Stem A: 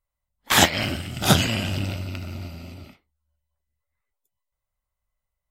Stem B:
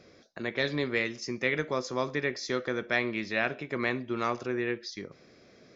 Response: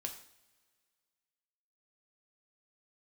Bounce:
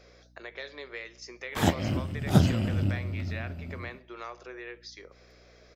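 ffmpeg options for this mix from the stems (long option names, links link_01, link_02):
-filter_complex "[0:a]tiltshelf=frequency=790:gain=8.5,adelay=1050,volume=0.5dB[link_01];[1:a]highpass=frequency=420:width=0.5412,highpass=frequency=420:width=1.3066,acompressor=threshold=-48dB:ratio=2,aeval=exprs='val(0)+0.001*(sin(2*PI*60*n/s)+sin(2*PI*2*60*n/s)/2+sin(2*PI*3*60*n/s)/3+sin(2*PI*4*60*n/s)/4+sin(2*PI*5*60*n/s)/5)':channel_layout=same,volume=1.5dB,asplit=2[link_02][link_03];[link_03]apad=whole_len=289183[link_04];[link_01][link_04]sidechaincompress=threshold=-43dB:ratio=12:attack=12:release=946[link_05];[link_05][link_02]amix=inputs=2:normalize=0"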